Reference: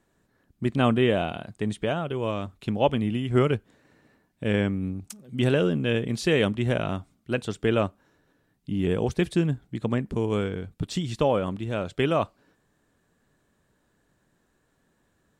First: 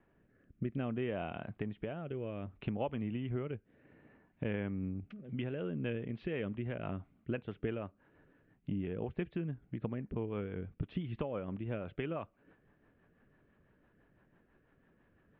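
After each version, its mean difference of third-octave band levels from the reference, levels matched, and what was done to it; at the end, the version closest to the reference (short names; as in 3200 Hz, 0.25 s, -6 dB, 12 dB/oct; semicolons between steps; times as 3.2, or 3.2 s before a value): 5.0 dB: steep low-pass 2800 Hz 36 dB/oct; compressor 6:1, threshold -36 dBFS, peak gain reduction 19 dB; rotary speaker horn 0.6 Hz, later 6 Hz, at 4.96; gain +2 dB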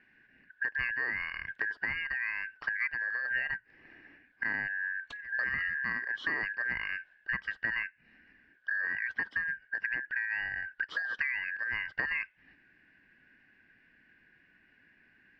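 14.5 dB: four-band scrambler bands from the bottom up 2143; LPF 3300 Hz 24 dB/oct; compressor 5:1, threshold -37 dBFS, peak gain reduction 19 dB; gain +5 dB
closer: first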